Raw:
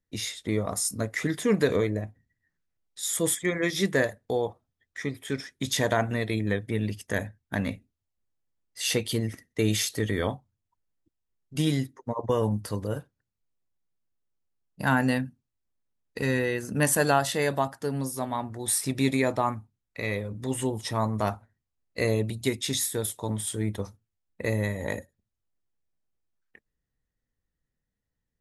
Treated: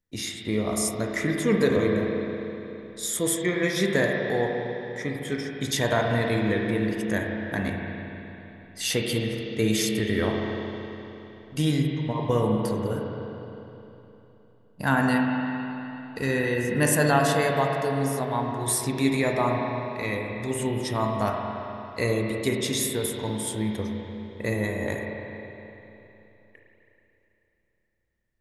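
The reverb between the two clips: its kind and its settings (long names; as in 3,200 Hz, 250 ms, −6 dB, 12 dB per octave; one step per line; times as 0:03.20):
spring reverb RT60 3.3 s, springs 33/51 ms, chirp 75 ms, DRR 0 dB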